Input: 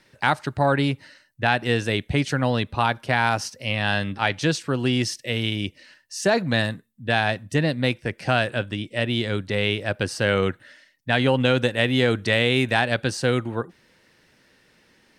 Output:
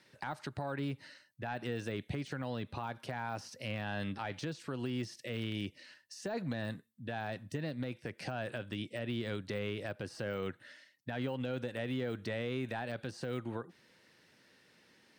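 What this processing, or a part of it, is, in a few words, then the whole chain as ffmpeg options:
broadcast voice chain: -af "highpass=100,deesser=0.95,acompressor=threshold=0.0501:ratio=6,equalizer=f=4200:t=o:w=0.77:g=2,alimiter=limit=0.0944:level=0:latency=1:release=103,volume=0.473"

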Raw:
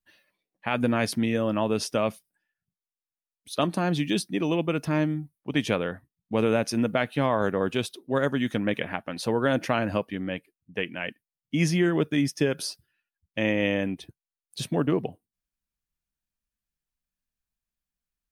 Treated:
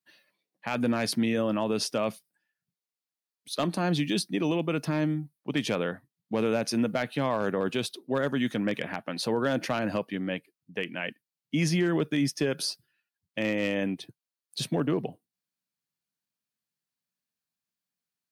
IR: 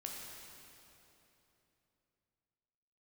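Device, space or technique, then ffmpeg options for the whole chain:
clipper into limiter: -af "highpass=f=120:w=0.5412,highpass=f=120:w=1.3066,equalizer=f=4400:w=3.3:g=4.5,asoftclip=type=hard:threshold=0.188,alimiter=limit=0.126:level=0:latency=1:release=29"

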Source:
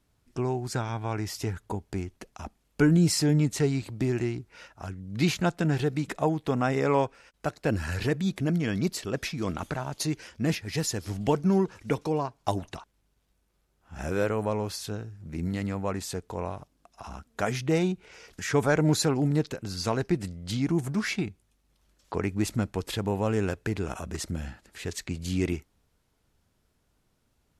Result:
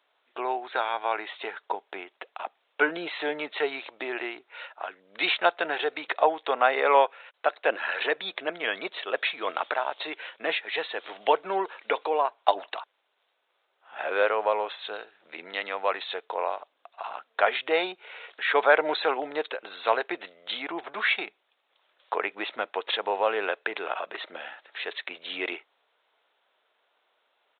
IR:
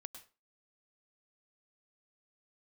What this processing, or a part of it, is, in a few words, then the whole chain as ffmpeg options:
musical greeting card: -filter_complex "[0:a]asettb=1/sr,asplit=3[s0][s1][s2];[s0]atrim=end=14.934[s3];[s1]atrim=start=14.93:end=16.26,asetpts=PTS-STARTPTS,afade=t=in:d=0.004:c=qsin,afade=t=out:st=1.326:d=0.004:c=qsin,aemphasis=mode=production:type=75fm[s4];[s2]atrim=start=16.256[s5];[s3][s4]acrossfade=d=0.004:c1=hsin:c2=qsin[s6];[s6][s5]acrossfade=d=0.004:c1=qsin:c2=hsin,aresample=8000,aresample=44100,highpass=f=540:w=0.5412,highpass=f=540:w=1.3066,equalizer=f=3900:t=o:w=0.38:g=5,volume=2.51"

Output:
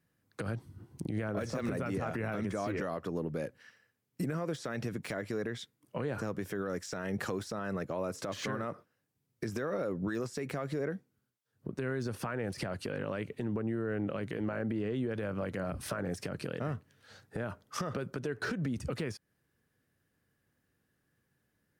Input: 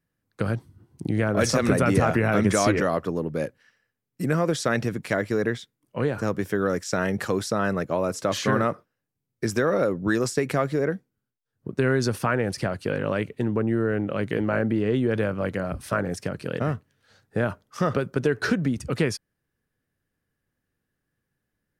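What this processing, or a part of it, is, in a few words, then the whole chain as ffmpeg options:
podcast mastering chain: -af "highpass=61,deesser=0.85,acompressor=threshold=0.0251:ratio=3,alimiter=level_in=1.68:limit=0.0631:level=0:latency=1:release=130,volume=0.596,volume=1.5" -ar 48000 -c:a libmp3lame -b:a 128k

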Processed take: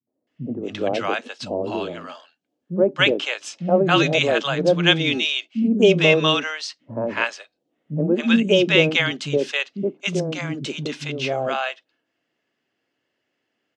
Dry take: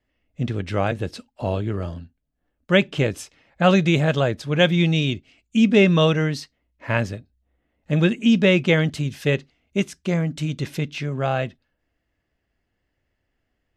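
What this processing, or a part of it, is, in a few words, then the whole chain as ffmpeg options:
television speaker: -filter_complex "[0:a]highpass=f=180:w=0.5412,highpass=f=180:w=1.3066,equalizer=f=190:t=q:w=4:g=-6,equalizer=f=1900:t=q:w=4:g=-4,equalizer=f=3000:t=q:w=4:g=3,lowpass=f=7400:w=0.5412,lowpass=f=7400:w=1.3066,acrossover=split=220|730[s0][s1][s2];[s1]adelay=70[s3];[s2]adelay=270[s4];[s0][s3][s4]amix=inputs=3:normalize=0,volume=1.68"

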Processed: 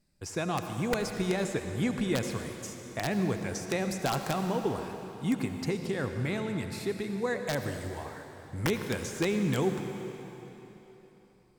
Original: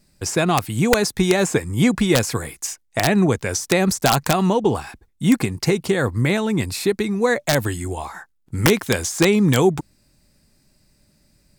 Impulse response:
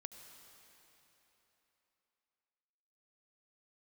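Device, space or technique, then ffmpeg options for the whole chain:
swimming-pool hall: -filter_complex "[1:a]atrim=start_sample=2205[s0];[0:a][s0]afir=irnorm=-1:irlink=0,highshelf=f=5000:g=-5,volume=0.447"

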